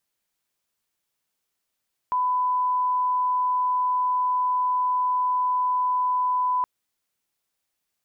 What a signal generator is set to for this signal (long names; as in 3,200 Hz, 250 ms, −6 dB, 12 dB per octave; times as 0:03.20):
line-up tone −20 dBFS 4.52 s